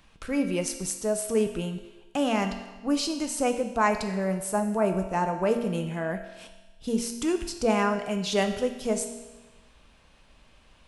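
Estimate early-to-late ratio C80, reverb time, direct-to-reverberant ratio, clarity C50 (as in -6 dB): 9.5 dB, 1.2 s, 5.0 dB, 8.0 dB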